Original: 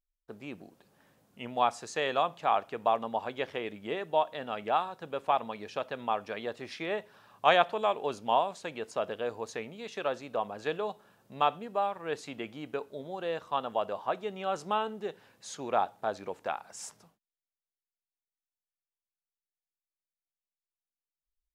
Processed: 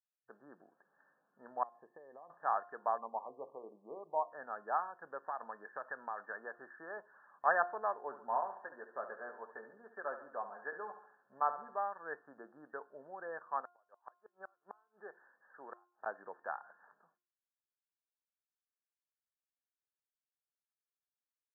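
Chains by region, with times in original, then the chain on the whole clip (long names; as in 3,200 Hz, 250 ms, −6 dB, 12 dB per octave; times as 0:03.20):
0:01.63–0:02.30: downward compressor 16 to 1, threshold −35 dBFS + moving average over 31 samples
0:02.98–0:04.32: linear-phase brick-wall low-pass 1,200 Hz + mains-hum notches 60/120/180/240/300/360/420/480/540 Hz
0:05.27–0:06.97: high-shelf EQ 2,100 Hz +11 dB + downward compressor 4 to 1, threshold −29 dBFS
0:07.98–0:11.75: notch comb filter 160 Hz + repeating echo 70 ms, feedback 48%, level −11 dB
0:13.61–0:16.06: high-pass filter 350 Hz 6 dB per octave + gate with flip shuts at −25 dBFS, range −36 dB
whole clip: brick-wall band-pass 120–1,800 Hz; first difference; hum removal 353.6 Hz, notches 4; level +11.5 dB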